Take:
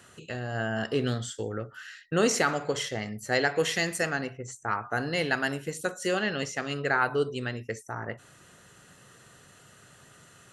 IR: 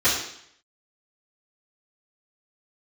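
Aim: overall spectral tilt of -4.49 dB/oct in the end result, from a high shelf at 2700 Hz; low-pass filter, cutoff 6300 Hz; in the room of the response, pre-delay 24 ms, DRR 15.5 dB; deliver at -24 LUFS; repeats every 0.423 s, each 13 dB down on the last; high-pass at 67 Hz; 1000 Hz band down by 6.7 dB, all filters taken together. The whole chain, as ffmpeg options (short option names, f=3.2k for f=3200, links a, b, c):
-filter_complex "[0:a]highpass=67,lowpass=6.3k,equalizer=f=1k:t=o:g=-9,highshelf=f=2.7k:g=-6.5,aecho=1:1:423|846|1269:0.224|0.0493|0.0108,asplit=2[a][b];[1:a]atrim=start_sample=2205,adelay=24[c];[b][c]afir=irnorm=-1:irlink=0,volume=-32.5dB[d];[a][d]amix=inputs=2:normalize=0,volume=8dB"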